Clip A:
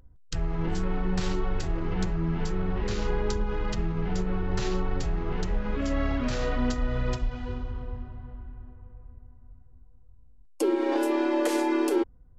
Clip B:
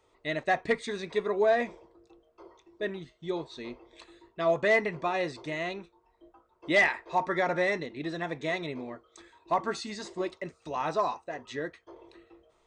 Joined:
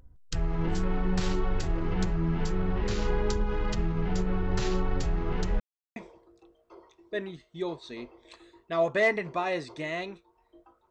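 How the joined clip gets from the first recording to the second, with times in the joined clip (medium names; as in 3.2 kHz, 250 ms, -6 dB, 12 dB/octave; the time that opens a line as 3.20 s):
clip A
5.60–5.96 s: mute
5.96 s: go over to clip B from 1.64 s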